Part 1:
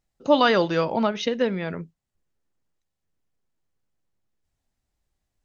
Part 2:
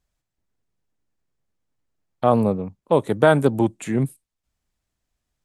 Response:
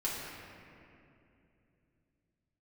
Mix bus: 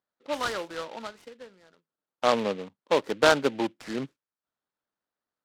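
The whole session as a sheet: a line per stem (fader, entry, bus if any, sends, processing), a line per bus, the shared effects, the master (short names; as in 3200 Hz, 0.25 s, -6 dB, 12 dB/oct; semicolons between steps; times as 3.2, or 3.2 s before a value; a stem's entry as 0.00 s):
-11.0 dB, 0.00 s, no send, ending taper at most 310 dB/s; auto duck -24 dB, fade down 1.30 s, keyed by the second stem
-3.0 dB, 0.00 s, no send, dry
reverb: off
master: speaker cabinet 350–3700 Hz, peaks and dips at 380 Hz -3 dB, 710 Hz -4 dB, 1400 Hz +5 dB, 2400 Hz -4 dB; low-pass opened by the level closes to 1800 Hz, open at -21.5 dBFS; noise-modulated delay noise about 2300 Hz, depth 0.069 ms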